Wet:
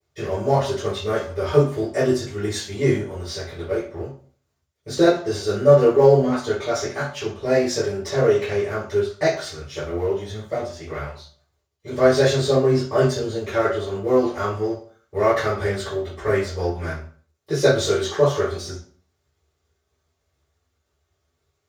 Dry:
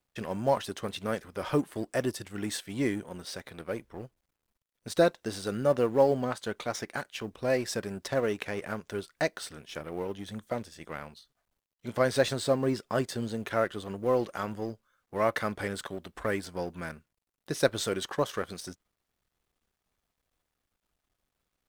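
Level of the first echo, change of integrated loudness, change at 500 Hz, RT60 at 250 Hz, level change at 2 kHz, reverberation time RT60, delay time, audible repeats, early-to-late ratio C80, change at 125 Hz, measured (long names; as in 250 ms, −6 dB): no echo audible, +10.0 dB, +11.0 dB, 0.50 s, +7.0 dB, 0.45 s, no echo audible, no echo audible, 10.0 dB, +12.5 dB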